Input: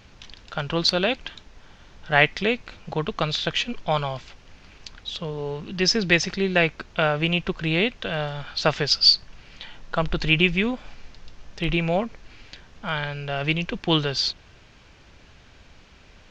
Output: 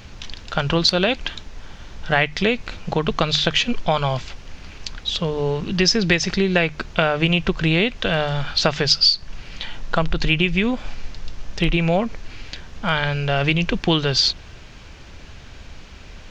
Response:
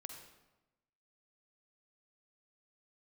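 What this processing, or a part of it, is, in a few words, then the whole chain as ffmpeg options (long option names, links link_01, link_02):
ASMR close-microphone chain: -af "lowshelf=frequency=130:gain=6.5,acompressor=threshold=-22dB:ratio=6,highshelf=frequency=6900:gain=5,bandreject=frequency=50:width_type=h:width=6,bandreject=frequency=100:width_type=h:width=6,bandreject=frequency=150:width_type=h:width=6,volume=7.5dB"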